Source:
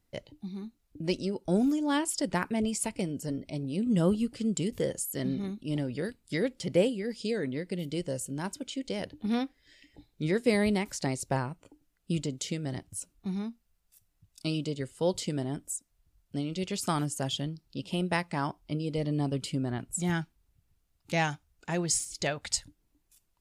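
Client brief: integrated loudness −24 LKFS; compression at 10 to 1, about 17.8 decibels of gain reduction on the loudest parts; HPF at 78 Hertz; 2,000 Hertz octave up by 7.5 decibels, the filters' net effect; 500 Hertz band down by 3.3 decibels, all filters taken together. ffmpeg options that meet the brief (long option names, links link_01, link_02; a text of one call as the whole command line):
ffmpeg -i in.wav -af "highpass=78,equalizer=frequency=500:width_type=o:gain=-4.5,equalizer=frequency=2000:width_type=o:gain=9,acompressor=threshold=-39dB:ratio=10,volume=19.5dB" out.wav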